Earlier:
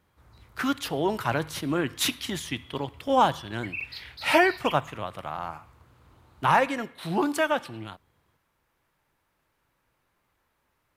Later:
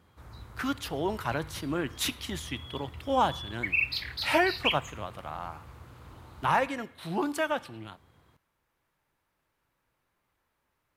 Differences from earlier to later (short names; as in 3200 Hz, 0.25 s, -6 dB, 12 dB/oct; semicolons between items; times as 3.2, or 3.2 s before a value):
speech -4.5 dB; background +8.0 dB